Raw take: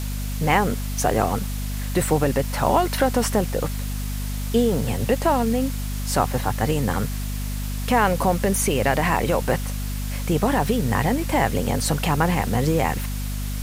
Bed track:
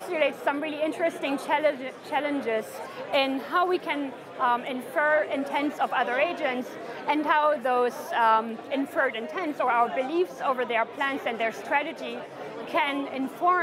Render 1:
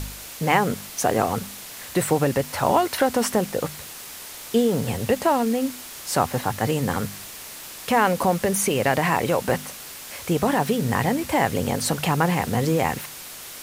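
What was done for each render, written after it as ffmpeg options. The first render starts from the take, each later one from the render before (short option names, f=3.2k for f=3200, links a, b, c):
-af "bandreject=f=50:t=h:w=4,bandreject=f=100:t=h:w=4,bandreject=f=150:t=h:w=4,bandreject=f=200:t=h:w=4,bandreject=f=250:t=h:w=4"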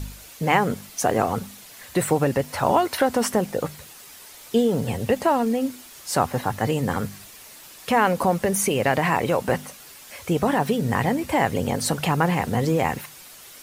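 -af "afftdn=nr=8:nf=-39"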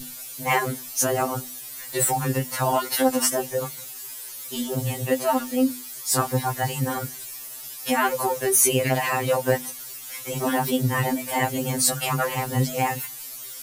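-af "crystalizer=i=2:c=0,afftfilt=real='re*2.45*eq(mod(b,6),0)':imag='im*2.45*eq(mod(b,6),0)':win_size=2048:overlap=0.75"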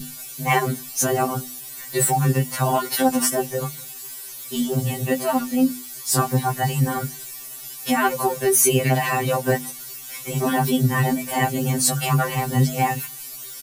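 -af "equalizer=f=170:w=2.1:g=14,aecho=1:1:5.1:0.55"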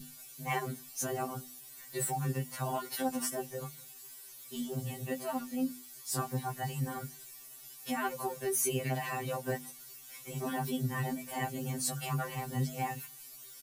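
-af "volume=-14.5dB"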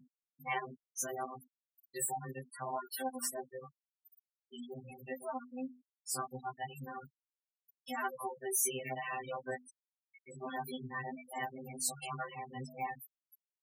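-af "afftfilt=real='re*gte(hypot(re,im),0.02)':imag='im*gte(hypot(re,im),0.02)':win_size=1024:overlap=0.75,highpass=f=680:p=1"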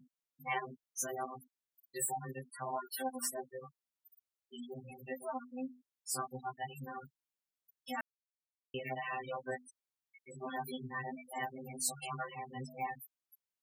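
-filter_complex "[0:a]asplit=3[a][b][c];[a]atrim=end=8.01,asetpts=PTS-STARTPTS,afade=t=out:st=8.006:d=0.004:c=hsin[d];[b]atrim=start=8.01:end=8.74,asetpts=PTS-STARTPTS,volume=0[e];[c]atrim=start=8.74,asetpts=PTS-STARTPTS,afade=t=in:d=0.004:c=hsin[f];[d][e][f]concat=n=3:v=0:a=1"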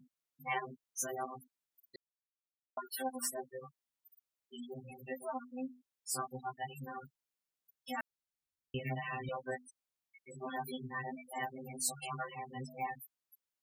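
-filter_complex "[0:a]asettb=1/sr,asplit=3[a][b][c];[a]atrim=end=7.974[d];[b]atrim=start=7.97:end=9.29,asetpts=PTS-STARTPTS,afade=t=in:d=0.004:c=qsin,afade=t=out:st=1.316:d=0.004:c=qsin,asubboost=boost=10.5:cutoff=240[e];[c]atrim=start=9.286[f];[d][e]acrossfade=d=0.004:c1=hsin:c2=qsin[g];[g][f]acrossfade=d=0.004:c1=qsin:c2=hsin,asplit=3[h][i][j];[h]atrim=end=1.96,asetpts=PTS-STARTPTS,afade=t=out:st=1.956:d=0.004:c=hsin[k];[i]atrim=start=1.96:end=2.77,asetpts=PTS-STARTPTS,volume=0[l];[j]atrim=start=2.77,asetpts=PTS-STARTPTS,afade=t=in:d=0.004:c=hsin[m];[k][l][m]concat=n=3:v=0:a=1"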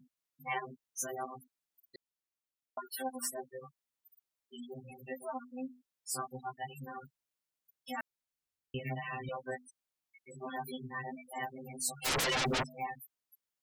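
-filter_complex "[0:a]asplit=3[a][b][c];[a]afade=t=out:st=12.04:d=0.02[d];[b]aeval=exprs='0.0376*sin(PI/2*10*val(0)/0.0376)':c=same,afade=t=in:st=12.04:d=0.02,afade=t=out:st=12.62:d=0.02[e];[c]afade=t=in:st=12.62:d=0.02[f];[d][e][f]amix=inputs=3:normalize=0"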